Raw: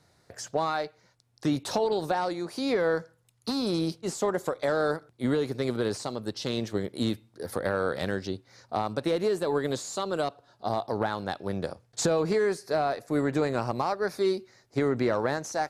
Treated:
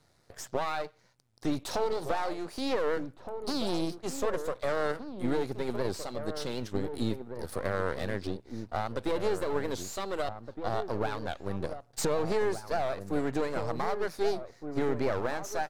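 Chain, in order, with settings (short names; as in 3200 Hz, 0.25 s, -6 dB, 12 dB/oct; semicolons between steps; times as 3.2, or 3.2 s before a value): half-wave gain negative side -12 dB; outdoor echo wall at 260 m, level -8 dB; record warp 78 rpm, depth 160 cents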